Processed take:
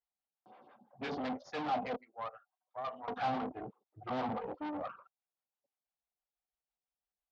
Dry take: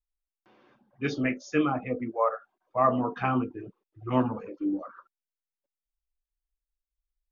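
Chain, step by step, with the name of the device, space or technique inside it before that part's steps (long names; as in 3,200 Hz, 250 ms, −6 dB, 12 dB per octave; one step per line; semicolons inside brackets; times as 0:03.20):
0:01.96–0:03.08: first difference
vibe pedal into a guitar amplifier (phaser with staggered stages 6 Hz; tube saturation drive 41 dB, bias 0.7; loudspeaker in its box 100–4,400 Hz, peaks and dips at 340 Hz −9 dB, 750 Hz +9 dB, 1,700 Hz −4 dB, 2,500 Hz −4 dB)
level +6.5 dB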